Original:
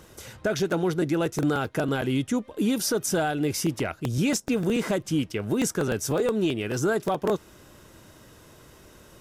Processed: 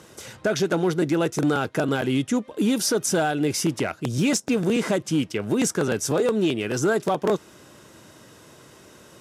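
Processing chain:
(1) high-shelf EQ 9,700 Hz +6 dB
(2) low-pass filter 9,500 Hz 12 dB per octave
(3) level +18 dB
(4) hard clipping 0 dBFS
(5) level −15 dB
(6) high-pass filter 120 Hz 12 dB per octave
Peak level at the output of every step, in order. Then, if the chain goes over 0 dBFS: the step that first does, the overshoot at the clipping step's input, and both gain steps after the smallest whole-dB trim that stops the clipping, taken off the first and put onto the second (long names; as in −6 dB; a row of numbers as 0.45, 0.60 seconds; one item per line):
−13.5, −14.5, +3.5, 0.0, −15.0, −10.5 dBFS
step 3, 3.5 dB
step 3 +14 dB, step 5 −11 dB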